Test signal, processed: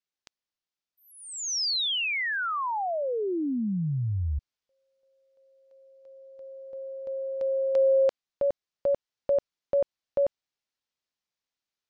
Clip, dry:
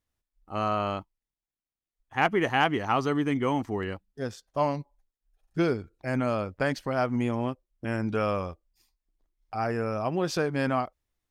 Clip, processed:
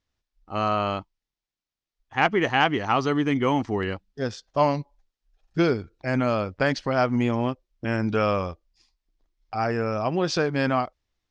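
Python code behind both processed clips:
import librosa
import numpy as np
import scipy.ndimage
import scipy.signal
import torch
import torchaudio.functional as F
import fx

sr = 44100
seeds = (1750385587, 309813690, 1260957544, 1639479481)

p1 = scipy.signal.sosfilt(scipy.signal.butter(4, 5700.0, 'lowpass', fs=sr, output='sos'), x)
p2 = fx.high_shelf(p1, sr, hz=4300.0, db=7.5)
p3 = fx.rider(p2, sr, range_db=10, speed_s=2.0)
p4 = p2 + (p3 * 10.0 ** (2.0 / 20.0))
y = p4 * 10.0 ** (-3.5 / 20.0)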